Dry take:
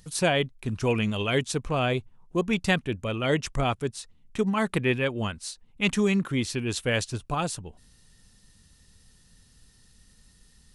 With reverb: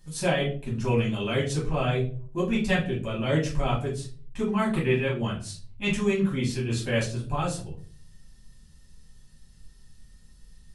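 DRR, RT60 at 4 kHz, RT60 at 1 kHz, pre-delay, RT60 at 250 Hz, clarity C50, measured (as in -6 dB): -7.0 dB, 0.30 s, 0.40 s, 5 ms, 0.65 s, 8.0 dB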